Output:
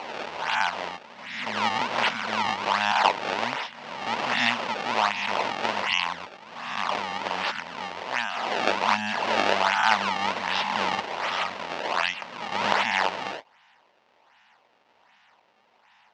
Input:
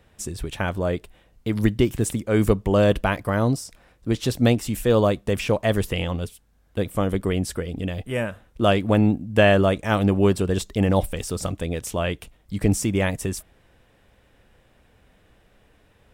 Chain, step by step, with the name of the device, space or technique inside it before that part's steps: reverse spectral sustain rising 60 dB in 1.43 s; elliptic band-stop 240–780 Hz; circuit-bent sampling toy (decimation with a swept rate 25×, swing 160% 1.3 Hz; cabinet simulation 580–5300 Hz, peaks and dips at 600 Hz +3 dB, 930 Hz +7 dB, 2 kHz +3 dB, 2.8 kHz +5 dB); trim +1 dB

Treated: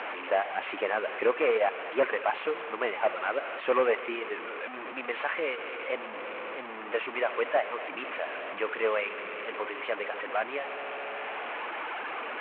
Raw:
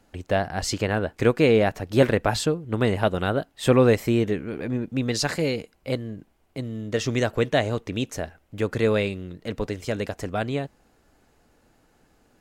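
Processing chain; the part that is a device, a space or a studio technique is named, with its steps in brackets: 0.50–1.33 s: bass shelf 370 Hz +6 dB; multi-head delay 70 ms, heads all three, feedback 51%, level -18 dB; reverb removal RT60 2 s; digital answering machine (band-pass 370–3300 Hz; one-bit delta coder 16 kbps, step -29.5 dBFS; cabinet simulation 490–4100 Hz, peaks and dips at 1.1 kHz +4 dB, 2.4 kHz +4 dB, 3.6 kHz -5 dB)

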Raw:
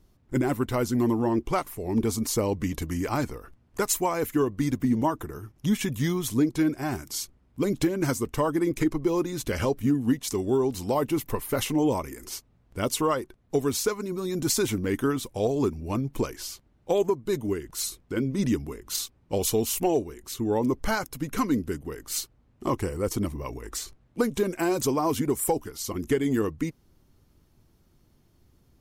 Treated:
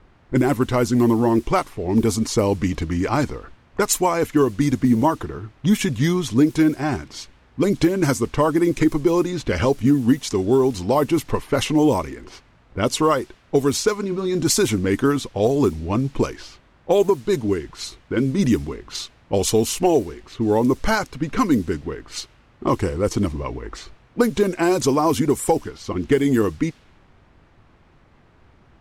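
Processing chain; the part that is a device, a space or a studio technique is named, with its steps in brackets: 14.00–14.43 s: doubling 30 ms -12 dB; cassette deck with a dynamic noise filter (white noise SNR 28 dB; level-controlled noise filter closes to 1.4 kHz, open at -20 dBFS); trim +7 dB

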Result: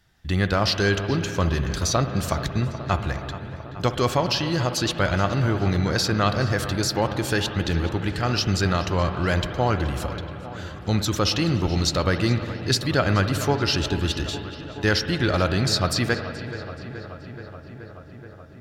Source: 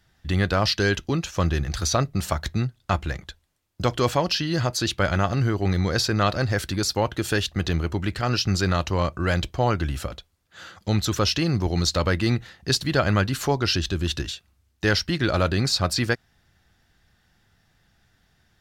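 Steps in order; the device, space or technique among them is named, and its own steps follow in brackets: dub delay into a spring reverb (filtered feedback delay 427 ms, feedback 79%, low-pass 3.7 kHz, level -14 dB; spring tank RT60 2.9 s, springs 60 ms, chirp 80 ms, DRR 8.5 dB)

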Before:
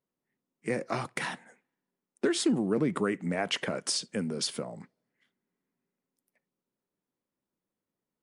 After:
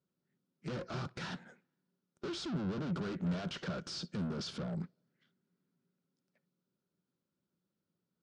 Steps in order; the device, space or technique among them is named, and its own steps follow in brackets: guitar amplifier (valve stage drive 43 dB, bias 0.75; tone controls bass +12 dB, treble +15 dB; cabinet simulation 80–4600 Hz, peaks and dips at 170 Hz +7 dB, 370 Hz +6 dB, 570 Hz +5 dB, 1.4 kHz +10 dB, 2 kHz -4 dB); trim -1.5 dB

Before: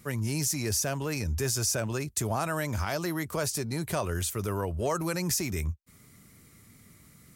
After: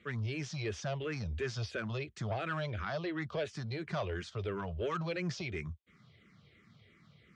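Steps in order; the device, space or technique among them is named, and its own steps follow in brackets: 2.70–3.22 s: treble shelf 6.9 kHz -10 dB; barber-pole phaser into a guitar amplifier (barber-pole phaser -2.9 Hz; saturation -25.5 dBFS, distortion -18 dB; cabinet simulation 100–4000 Hz, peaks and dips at 270 Hz -9 dB, 910 Hz -7 dB, 3.3 kHz +6 dB)

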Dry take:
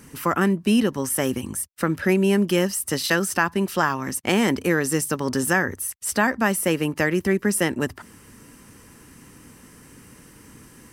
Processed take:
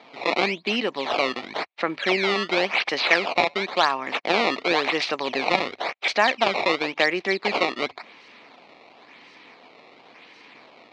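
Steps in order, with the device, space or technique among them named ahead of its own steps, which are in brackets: circuit-bent sampling toy (decimation with a swept rate 16×, swing 160% 0.94 Hz; cabinet simulation 490–4500 Hz, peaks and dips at 710 Hz +5 dB, 1.5 kHz -6 dB, 2.3 kHz +9 dB, 4.1 kHz +6 dB); trim +2 dB

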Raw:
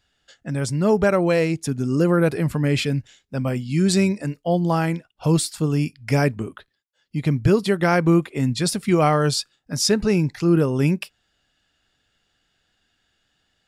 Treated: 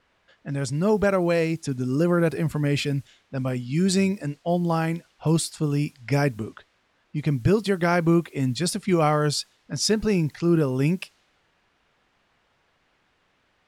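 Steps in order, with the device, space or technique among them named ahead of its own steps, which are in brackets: cassette deck with a dynamic noise filter (white noise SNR 34 dB; level-controlled noise filter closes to 2.2 kHz, open at -18 dBFS); trim -3 dB

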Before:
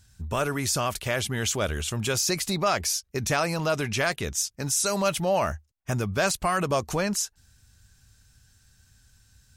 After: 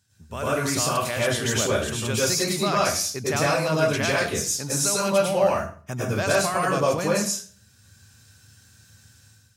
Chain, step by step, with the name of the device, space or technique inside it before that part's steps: far laptop microphone (reverberation RT60 0.45 s, pre-delay 95 ms, DRR -5.5 dB; high-pass 100 Hz 24 dB/octave; level rider gain up to 10.5 dB); trim -8.5 dB

